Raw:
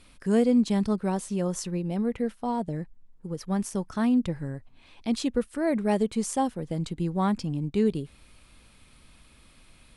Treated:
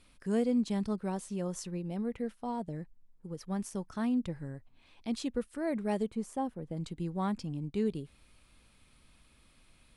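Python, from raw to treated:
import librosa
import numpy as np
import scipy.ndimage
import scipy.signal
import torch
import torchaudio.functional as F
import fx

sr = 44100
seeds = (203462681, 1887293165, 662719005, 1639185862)

y = fx.peak_eq(x, sr, hz=6000.0, db=-11.5, octaves=2.7, at=(6.09, 6.77))
y = y * 10.0 ** (-7.5 / 20.0)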